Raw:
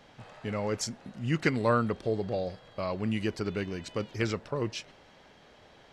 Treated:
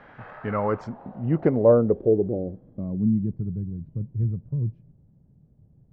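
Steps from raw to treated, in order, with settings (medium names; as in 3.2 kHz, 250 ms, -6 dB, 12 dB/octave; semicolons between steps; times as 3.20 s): low-pass sweep 1.6 kHz -> 140 Hz, 0.29–3.52 s; trim +5 dB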